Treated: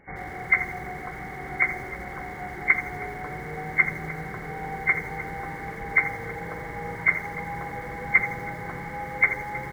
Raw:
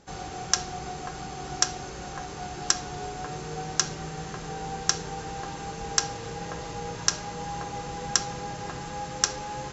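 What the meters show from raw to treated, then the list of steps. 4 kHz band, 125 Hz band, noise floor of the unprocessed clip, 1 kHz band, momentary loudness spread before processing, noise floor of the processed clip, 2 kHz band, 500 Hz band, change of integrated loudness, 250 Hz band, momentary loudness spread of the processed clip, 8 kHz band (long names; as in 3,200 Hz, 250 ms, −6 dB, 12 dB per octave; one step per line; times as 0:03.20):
below −20 dB, +0.5 dB, −38 dBFS, +0.5 dB, 10 LU, −37 dBFS, +14.0 dB, +0.5 dB, +3.5 dB, +0.5 dB, 12 LU, can't be measured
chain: hearing-aid frequency compression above 1,500 Hz 4 to 1
slap from a distant wall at 240 metres, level −10 dB
feedback echo at a low word length 82 ms, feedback 35%, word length 7 bits, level −11.5 dB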